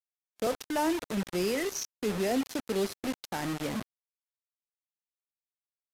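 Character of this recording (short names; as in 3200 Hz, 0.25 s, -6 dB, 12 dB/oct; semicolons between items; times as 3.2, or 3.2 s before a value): a quantiser's noise floor 6-bit, dither none; AAC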